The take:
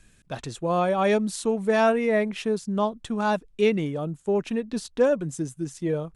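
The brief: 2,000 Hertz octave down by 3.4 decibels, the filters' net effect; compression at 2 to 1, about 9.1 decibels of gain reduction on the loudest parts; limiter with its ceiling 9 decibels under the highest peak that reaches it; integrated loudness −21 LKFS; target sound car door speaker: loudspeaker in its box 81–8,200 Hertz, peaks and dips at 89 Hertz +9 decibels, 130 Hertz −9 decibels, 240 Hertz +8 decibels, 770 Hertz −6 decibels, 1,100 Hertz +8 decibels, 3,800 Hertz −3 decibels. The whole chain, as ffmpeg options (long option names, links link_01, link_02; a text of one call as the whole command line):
ffmpeg -i in.wav -af "equalizer=frequency=2000:width_type=o:gain=-5,acompressor=threshold=-33dB:ratio=2,alimiter=level_in=4dB:limit=-24dB:level=0:latency=1,volume=-4dB,highpass=81,equalizer=frequency=89:width_type=q:width=4:gain=9,equalizer=frequency=130:width_type=q:width=4:gain=-9,equalizer=frequency=240:width_type=q:width=4:gain=8,equalizer=frequency=770:width_type=q:width=4:gain=-6,equalizer=frequency=1100:width_type=q:width=4:gain=8,equalizer=frequency=3800:width_type=q:width=4:gain=-3,lowpass=frequency=8200:width=0.5412,lowpass=frequency=8200:width=1.3066,volume=14dB" out.wav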